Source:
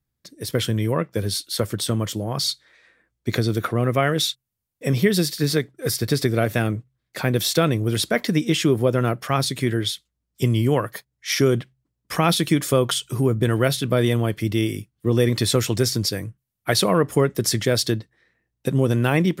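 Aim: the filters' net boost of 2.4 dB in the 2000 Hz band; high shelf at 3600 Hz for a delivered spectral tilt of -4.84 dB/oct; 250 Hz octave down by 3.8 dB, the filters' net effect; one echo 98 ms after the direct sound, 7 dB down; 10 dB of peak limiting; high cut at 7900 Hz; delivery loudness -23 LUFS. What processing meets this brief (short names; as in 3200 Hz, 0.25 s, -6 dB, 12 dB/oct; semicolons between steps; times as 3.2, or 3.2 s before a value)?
LPF 7900 Hz; bell 250 Hz -5.5 dB; bell 2000 Hz +4 dB; high shelf 3600 Hz -3.5 dB; limiter -14 dBFS; echo 98 ms -7 dB; gain +2.5 dB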